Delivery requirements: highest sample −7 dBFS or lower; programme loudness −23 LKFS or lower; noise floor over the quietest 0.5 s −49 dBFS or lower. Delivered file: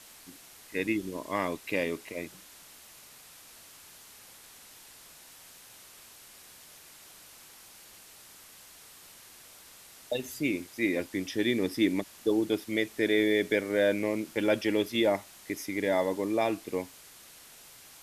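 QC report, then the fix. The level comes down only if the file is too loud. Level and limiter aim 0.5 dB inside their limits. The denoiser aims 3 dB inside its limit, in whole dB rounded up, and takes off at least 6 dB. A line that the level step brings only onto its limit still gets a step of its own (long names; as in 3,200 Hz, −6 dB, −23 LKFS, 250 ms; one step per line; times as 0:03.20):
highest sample −13.5 dBFS: in spec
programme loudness −30.0 LKFS: in spec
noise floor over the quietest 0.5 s −53 dBFS: in spec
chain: no processing needed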